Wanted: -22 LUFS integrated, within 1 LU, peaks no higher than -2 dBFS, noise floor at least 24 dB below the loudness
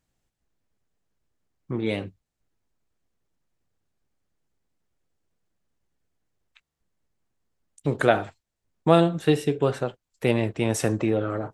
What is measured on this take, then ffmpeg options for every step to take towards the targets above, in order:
loudness -24.5 LUFS; peak -3.0 dBFS; loudness target -22.0 LUFS
-> -af "volume=2.5dB,alimiter=limit=-2dB:level=0:latency=1"

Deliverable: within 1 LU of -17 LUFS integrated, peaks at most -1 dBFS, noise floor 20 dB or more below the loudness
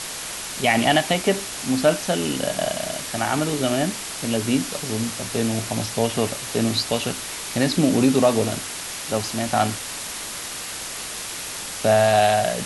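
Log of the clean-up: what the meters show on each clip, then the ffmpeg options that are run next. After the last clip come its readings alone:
noise floor -32 dBFS; noise floor target -43 dBFS; loudness -22.5 LUFS; peak -4.5 dBFS; loudness target -17.0 LUFS
-> -af "afftdn=nr=11:nf=-32"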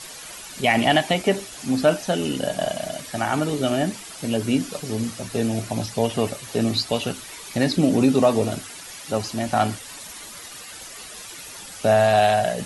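noise floor -39 dBFS; noise floor target -43 dBFS
-> -af "afftdn=nr=6:nf=-39"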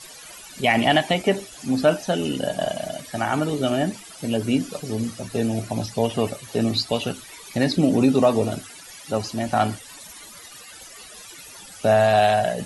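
noise floor -43 dBFS; loudness -22.5 LUFS; peak -5.0 dBFS; loudness target -17.0 LUFS
-> -af "volume=5.5dB,alimiter=limit=-1dB:level=0:latency=1"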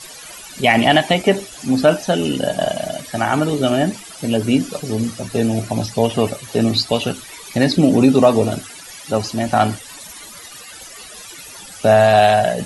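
loudness -17.0 LUFS; peak -1.0 dBFS; noise floor -37 dBFS

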